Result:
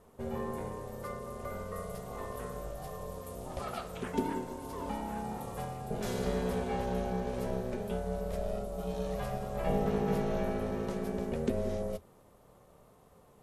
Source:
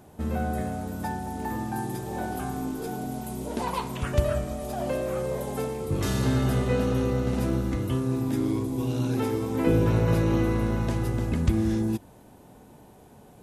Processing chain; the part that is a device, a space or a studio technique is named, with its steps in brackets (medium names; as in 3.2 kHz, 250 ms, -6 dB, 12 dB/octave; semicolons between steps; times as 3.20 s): alien voice (ring modulator 310 Hz; flange 0.61 Hz, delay 3.9 ms, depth 3 ms, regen -75%); trim -1.5 dB